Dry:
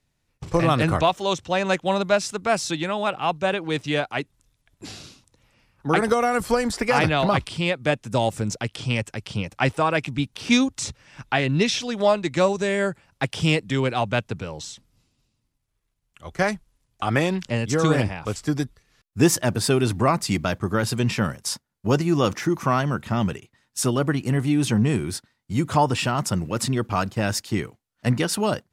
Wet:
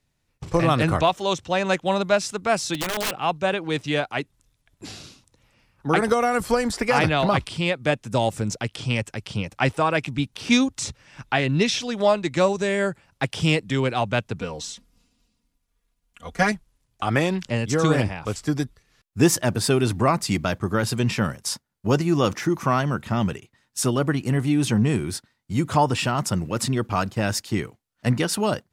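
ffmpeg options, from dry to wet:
-filter_complex "[0:a]asplit=3[s0][s1][s2];[s0]afade=t=out:st=2.74:d=0.02[s3];[s1]aeval=exprs='(mod(10*val(0)+1,2)-1)/10':c=same,afade=t=in:st=2.74:d=0.02,afade=t=out:st=3.17:d=0.02[s4];[s2]afade=t=in:st=3.17:d=0.02[s5];[s3][s4][s5]amix=inputs=3:normalize=0,asettb=1/sr,asplit=3[s6][s7][s8];[s6]atrim=end=14.404[s9];[s7]atrim=start=14.4:end=16.52,asetpts=PTS-STARTPTS,afade=t=in:d=0.004:c=qsin,afade=t=out:st=2.116:d=0.004:c=qsin,aecho=1:1:4.2:0.89,atrim=end_sample=93492[s10];[s8]atrim=start=16.516[s11];[s9][s10]acrossfade=d=0.004:c1=hsin:c2=qsin[s12];[s12][s11]acrossfade=d=0.004:c1=qsin:c2=hsin"

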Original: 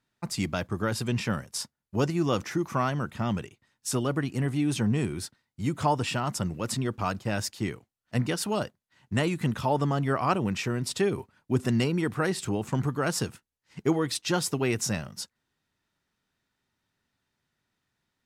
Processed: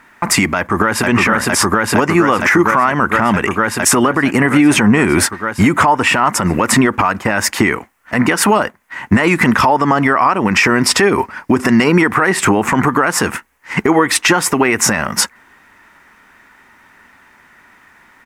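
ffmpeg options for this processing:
-filter_complex "[0:a]asplit=2[s0][s1];[s1]afade=t=in:st=0.57:d=0.01,afade=t=out:st=1.08:d=0.01,aecho=0:1:460|920|1380|1840|2300|2760|3220|3680|4140|4600|5060|5520:0.841395|0.631046|0.473285|0.354964|0.266223|0.199667|0.14975|0.112313|0.0842345|0.0631759|0.0473819|0.0355364[s2];[s0][s2]amix=inputs=2:normalize=0,asettb=1/sr,asplit=3[s3][s4][s5];[s3]atrim=end=9.164[s6];[s4]atrim=start=9.16:end=12.11,asetpts=PTS-STARTPTS,afade=t=in:d=0.004:c=qsin,afade=t=out:st=2.946:d=0.004:c=qsin,equalizer=f=5100:t=o:w=0.37:g=8.5[s7];[s5]atrim=start=12.106[s8];[s6][s7]acrossfade=d=0.004:c1=hsin:c2=qsin[s9];[s9][s8]acrossfade=d=0.004:c1=qsin:c2=hsin,equalizer=f=125:t=o:w=1:g=-10,equalizer=f=250:t=o:w=1:g=4,equalizer=f=1000:t=o:w=1:g=9,equalizer=f=2000:t=o:w=1:g=12,equalizer=f=4000:t=o:w=1:g=-9,acompressor=threshold=0.0282:ratio=10,alimiter=level_in=23.7:limit=0.891:release=50:level=0:latency=1,volume=0.891"

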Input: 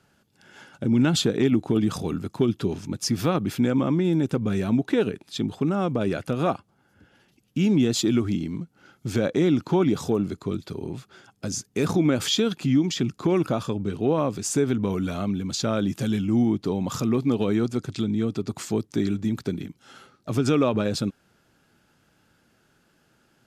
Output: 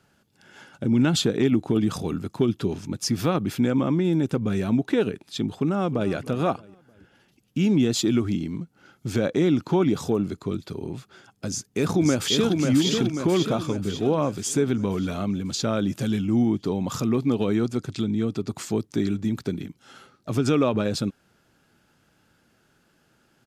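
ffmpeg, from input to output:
-filter_complex "[0:a]asplit=2[s0][s1];[s1]afade=t=in:st=5.53:d=0.01,afade=t=out:st=6.12:d=0.01,aecho=0:1:310|620|930:0.149624|0.0598494|0.0239398[s2];[s0][s2]amix=inputs=2:normalize=0,asplit=2[s3][s4];[s4]afade=t=in:st=11.47:d=0.01,afade=t=out:st=12.53:d=0.01,aecho=0:1:540|1080|1620|2160|2700|3240|3780|4320:0.668344|0.367589|0.202174|0.111196|0.0611576|0.0336367|0.0185002|0.0101751[s5];[s3][s5]amix=inputs=2:normalize=0"

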